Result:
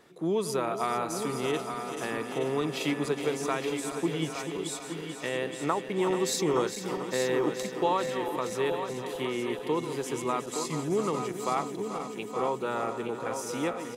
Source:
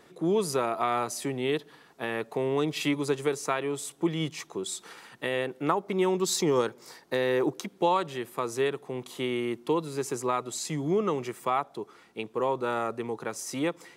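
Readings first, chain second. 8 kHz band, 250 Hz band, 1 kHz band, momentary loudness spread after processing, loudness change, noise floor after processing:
−1.0 dB, −1.0 dB, −1.0 dB, 7 LU, −1.0 dB, −40 dBFS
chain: feedback delay that plays each chunk backwards 218 ms, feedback 84%, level −10.5 dB
single-tap delay 868 ms −8.5 dB
level −2.5 dB

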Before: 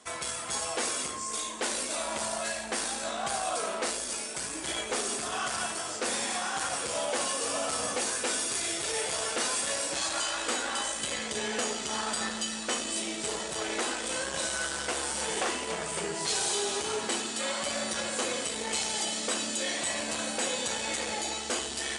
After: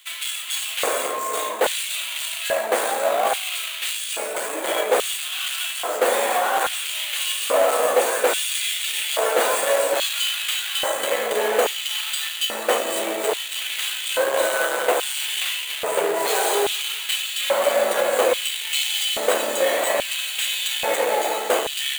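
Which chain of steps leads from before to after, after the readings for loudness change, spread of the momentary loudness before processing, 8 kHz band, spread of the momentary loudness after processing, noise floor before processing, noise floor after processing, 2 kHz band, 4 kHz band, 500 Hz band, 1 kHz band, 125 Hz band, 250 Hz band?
+8.5 dB, 4 LU, +3.5 dB, 5 LU, −37 dBFS, −30 dBFS, +8.5 dB, +9.0 dB, +13.5 dB, +10.0 dB, can't be measured, +1.5 dB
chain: each half-wave held at its own peak
auto-filter high-pass square 0.6 Hz 520–3,000 Hz
parametric band 5,300 Hz −14 dB 0.52 octaves
level +5 dB

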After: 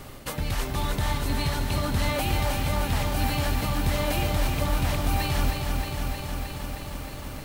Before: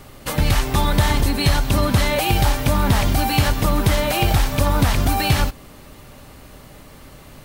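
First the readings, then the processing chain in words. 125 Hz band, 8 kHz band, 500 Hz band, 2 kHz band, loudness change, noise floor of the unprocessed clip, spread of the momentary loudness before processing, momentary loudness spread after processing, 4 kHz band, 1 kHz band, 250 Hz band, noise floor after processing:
−7.5 dB, −7.5 dB, −7.5 dB, −7.5 dB, −8.5 dB, −43 dBFS, 2 LU, 9 LU, −8.0 dB, −8.0 dB, −8.0 dB, −38 dBFS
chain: reversed playback
downward compressor 6 to 1, threshold −25 dBFS, peak gain reduction 13 dB
reversed playback
feedback echo at a low word length 312 ms, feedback 80%, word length 9 bits, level −5 dB

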